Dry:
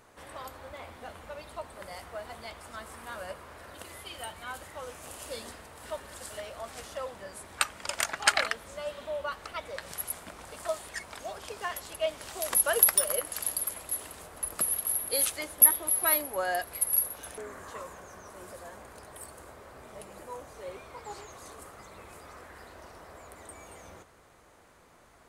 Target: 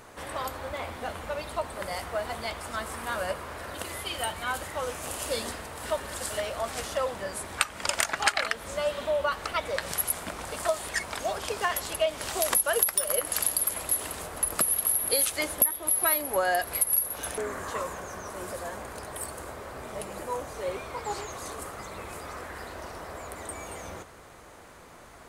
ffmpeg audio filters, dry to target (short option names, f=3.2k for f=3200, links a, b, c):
-af "acompressor=threshold=-31dB:ratio=5,volume=9dB"